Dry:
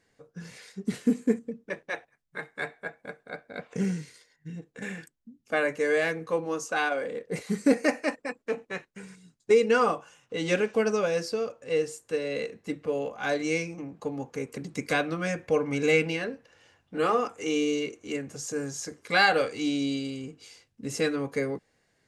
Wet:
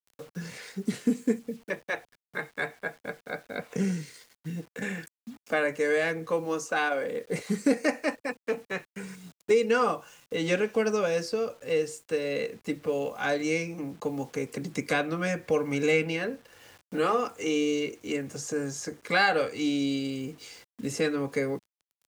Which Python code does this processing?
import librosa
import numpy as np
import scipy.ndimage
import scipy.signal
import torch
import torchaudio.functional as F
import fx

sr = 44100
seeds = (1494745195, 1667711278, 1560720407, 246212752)

y = fx.quant_dither(x, sr, seeds[0], bits=10, dither='none')
y = fx.band_squash(y, sr, depth_pct=40)